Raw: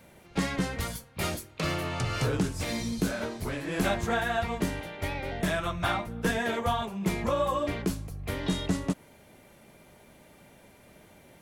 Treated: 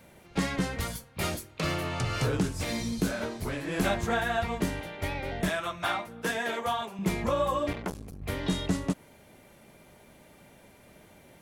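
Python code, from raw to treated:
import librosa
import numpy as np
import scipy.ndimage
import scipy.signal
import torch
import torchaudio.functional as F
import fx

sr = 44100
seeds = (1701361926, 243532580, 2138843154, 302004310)

y = fx.highpass(x, sr, hz=440.0, slope=6, at=(5.49, 6.99))
y = fx.transformer_sat(y, sr, knee_hz=1100.0, at=(7.73, 8.22))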